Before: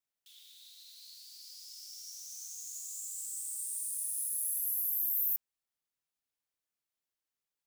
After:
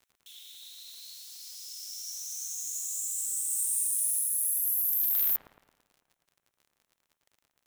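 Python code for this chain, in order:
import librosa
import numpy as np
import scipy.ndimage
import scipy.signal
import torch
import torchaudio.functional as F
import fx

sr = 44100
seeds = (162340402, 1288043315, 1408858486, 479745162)

p1 = scipy.signal.sosfilt(scipy.signal.butter(2, 1200.0, 'highpass', fs=sr, output='sos'), x)
p2 = fx.notch(p1, sr, hz=4700.0, q=5.2)
p3 = fx.rider(p2, sr, range_db=3, speed_s=0.5)
p4 = p2 + (p3 * 10.0 ** (1.0 / 20.0))
p5 = fx.dmg_crackle(p4, sr, seeds[0], per_s=46.0, level_db=-49.0)
p6 = fx.doubler(p5, sr, ms=19.0, db=-3.5, at=(3.48, 4.19))
p7 = 10.0 ** (-18.5 / 20.0) * (np.abs((p6 / 10.0 ** (-18.5 / 20.0) + 3.0) % 4.0 - 2.0) - 1.0)
y = p7 + fx.echo_wet_lowpass(p7, sr, ms=111, feedback_pct=50, hz=1600.0, wet_db=-5, dry=0)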